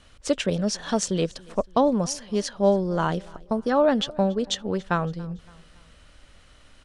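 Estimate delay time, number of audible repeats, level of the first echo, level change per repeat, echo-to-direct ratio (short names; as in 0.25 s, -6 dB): 0.282 s, 2, -24.0 dB, -7.0 dB, -23.0 dB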